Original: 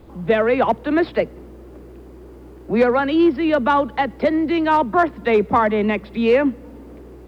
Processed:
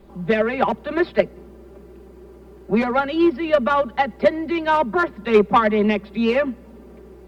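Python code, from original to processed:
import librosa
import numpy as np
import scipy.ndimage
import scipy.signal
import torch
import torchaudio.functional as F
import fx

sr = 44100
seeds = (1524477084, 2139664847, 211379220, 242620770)

y = x + 0.86 * np.pad(x, (int(5.1 * sr / 1000.0), 0))[:len(x)]
y = fx.cheby_harmonics(y, sr, harmonics=(3,), levels_db=(-17,), full_scale_db=-2.0)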